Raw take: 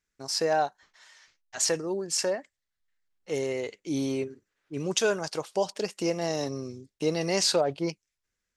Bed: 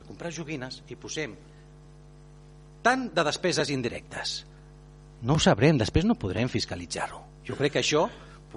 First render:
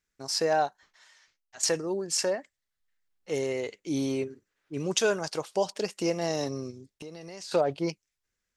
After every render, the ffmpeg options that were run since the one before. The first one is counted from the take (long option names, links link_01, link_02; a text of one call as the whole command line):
ffmpeg -i in.wav -filter_complex "[0:a]asplit=3[link_01][link_02][link_03];[link_01]afade=type=out:start_time=6.7:duration=0.02[link_04];[link_02]acompressor=threshold=-40dB:ratio=6:attack=3.2:release=140:knee=1:detection=peak,afade=type=in:start_time=6.7:duration=0.02,afade=type=out:start_time=7.51:duration=0.02[link_05];[link_03]afade=type=in:start_time=7.51:duration=0.02[link_06];[link_04][link_05][link_06]amix=inputs=3:normalize=0,asplit=2[link_07][link_08];[link_07]atrim=end=1.63,asetpts=PTS-STARTPTS,afade=type=out:start_time=0.64:duration=0.99:silence=0.298538[link_09];[link_08]atrim=start=1.63,asetpts=PTS-STARTPTS,afade=type=in:duration=0.004:curve=hsin:silence=0.298538[link_10];[link_09][link_10]concat=n=2:v=0:a=1" out.wav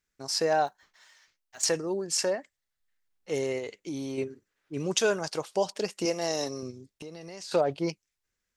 ffmpeg -i in.wav -filter_complex "[0:a]asplit=3[link_01][link_02][link_03];[link_01]afade=type=out:start_time=0.66:duration=0.02[link_04];[link_02]acrusher=bits=5:mode=log:mix=0:aa=0.000001,afade=type=in:start_time=0.66:duration=0.02,afade=type=out:start_time=1.63:duration=0.02[link_05];[link_03]afade=type=in:start_time=1.63:duration=0.02[link_06];[link_04][link_05][link_06]amix=inputs=3:normalize=0,asettb=1/sr,asplit=3[link_07][link_08][link_09];[link_07]atrim=end=3.584[link_10];[link_08]atrim=start=3.58:end=4.18,asetpts=PTS-STARTPTS,afade=type=in:duration=0.004:curve=qsin,afade=type=out:start_time=0.596:duration=0.004:curve=qsin,acompressor=threshold=-31dB:ratio=6:attack=3.2:release=140:knee=1:detection=peak[link_11];[link_09]atrim=start=4.176[link_12];[link_10][link_11]acrossfade=duration=0.004:curve1=hsin:curve2=qsin[link_13];[link_13][link_12]acrossfade=duration=0.004:curve1=qsin:curve2=hsin,asettb=1/sr,asplit=3[link_14][link_15][link_16];[link_14]atrim=end=6.054[link_17];[link_15]atrim=start=6.05:end=6.63,asetpts=PTS-STARTPTS,afade=type=in:duration=0.004:curve=qsin,afade=type=out:start_time=0.576:duration=0.004:curve=qsin,bass=frequency=250:gain=-8,treble=frequency=4000:gain=5[link_18];[link_16]atrim=start=6.626[link_19];[link_17][link_18]acrossfade=duration=0.004:curve1=hsin:curve2=qsin[link_20];[link_20][link_19]acrossfade=duration=0.004:curve1=qsin:curve2=hsin" out.wav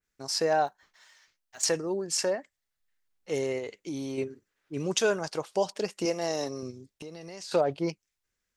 ffmpeg -i in.wav -af "adynamicequalizer=threshold=0.00631:dfrequency=2500:dqfactor=0.7:tfrequency=2500:tqfactor=0.7:attack=5:release=100:ratio=0.375:range=3:mode=cutabove:tftype=highshelf" out.wav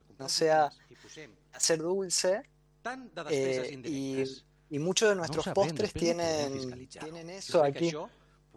ffmpeg -i in.wav -i bed.wav -filter_complex "[1:a]volume=-15.5dB[link_01];[0:a][link_01]amix=inputs=2:normalize=0" out.wav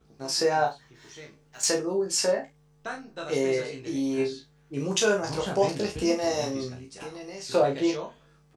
ffmpeg -i in.wav -filter_complex "[0:a]asplit=2[link_01][link_02];[link_02]adelay=33,volume=-5dB[link_03];[link_01][link_03]amix=inputs=2:normalize=0,aecho=1:1:15|66:0.708|0.178" out.wav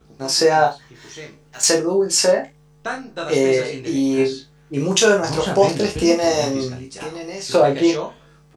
ffmpeg -i in.wav -af "volume=9dB,alimiter=limit=-3dB:level=0:latency=1" out.wav